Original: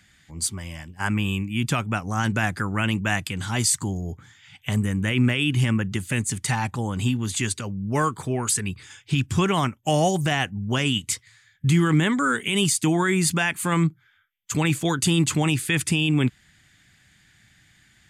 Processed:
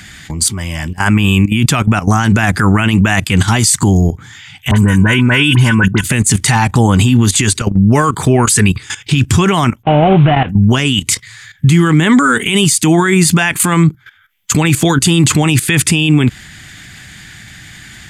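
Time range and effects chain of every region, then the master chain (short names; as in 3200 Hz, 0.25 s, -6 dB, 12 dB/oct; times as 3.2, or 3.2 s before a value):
4.71–6.04 small resonant body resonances 1000/1500 Hz, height 16 dB, ringing for 40 ms + dispersion highs, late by 48 ms, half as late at 2100 Hz + three-band expander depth 40%
9.83–10.49 CVSD 16 kbps + bell 1800 Hz -8.5 dB 0.27 oct + compressor 12:1, threshold -24 dBFS
whole clip: notch 540 Hz, Q 12; level quantiser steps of 15 dB; maximiser +26 dB; gain -1 dB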